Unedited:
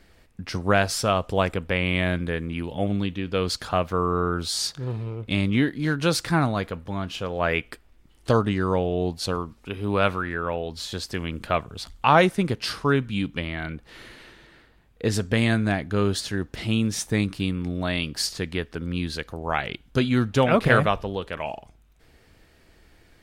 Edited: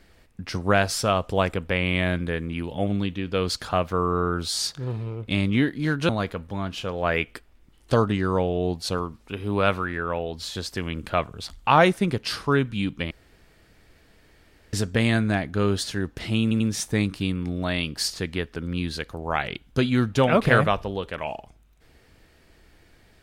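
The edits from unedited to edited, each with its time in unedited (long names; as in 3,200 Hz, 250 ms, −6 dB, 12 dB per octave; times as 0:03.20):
0:06.09–0:06.46: remove
0:13.48–0:15.10: fill with room tone
0:16.79: stutter 0.09 s, 3 plays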